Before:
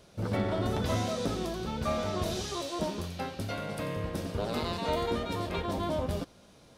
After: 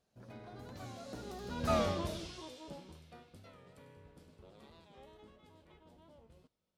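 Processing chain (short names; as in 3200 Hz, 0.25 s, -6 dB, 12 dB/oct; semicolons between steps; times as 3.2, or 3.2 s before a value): Doppler pass-by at 1.78, 34 m/s, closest 4 m; record warp 45 rpm, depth 100 cents; gain +1 dB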